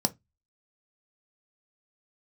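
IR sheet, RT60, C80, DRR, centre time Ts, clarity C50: 0.15 s, 34.5 dB, 7.5 dB, 3 ms, 24.0 dB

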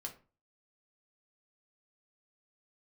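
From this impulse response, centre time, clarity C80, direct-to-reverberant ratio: 12 ms, 18.0 dB, 1.5 dB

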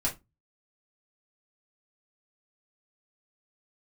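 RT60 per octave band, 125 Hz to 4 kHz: 0.40 s, 0.35 s, 0.20 s, 0.20 s, 0.15 s, 0.15 s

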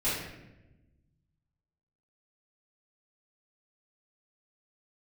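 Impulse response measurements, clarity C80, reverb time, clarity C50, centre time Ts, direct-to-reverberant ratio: 4.0 dB, 1.0 s, 0.5 dB, 66 ms, -13.0 dB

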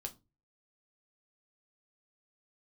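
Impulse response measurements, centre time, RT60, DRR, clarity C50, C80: 6 ms, 0.25 s, 3.5 dB, 19.0 dB, 26.5 dB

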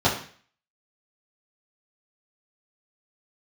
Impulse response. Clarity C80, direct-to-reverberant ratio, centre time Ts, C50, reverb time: 11.5 dB, -9.0 dB, 27 ms, 7.5 dB, 0.45 s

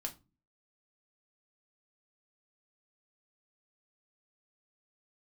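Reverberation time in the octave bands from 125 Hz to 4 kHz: 0.55 s, 0.55 s, 0.30 s, 0.25 s, 0.20 s, 0.20 s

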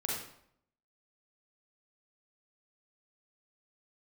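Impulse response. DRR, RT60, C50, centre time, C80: -4.0 dB, 0.70 s, 0.5 dB, 57 ms, 4.5 dB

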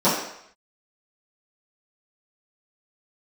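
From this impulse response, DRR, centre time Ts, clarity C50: -14.0 dB, 49 ms, 3.0 dB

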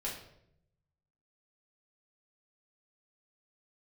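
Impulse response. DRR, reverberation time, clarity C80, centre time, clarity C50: -5.5 dB, 0.75 s, 9.0 dB, 36 ms, 5.0 dB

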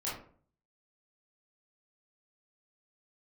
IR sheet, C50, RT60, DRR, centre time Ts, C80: 3.5 dB, 0.50 s, -8.0 dB, 45 ms, 9.0 dB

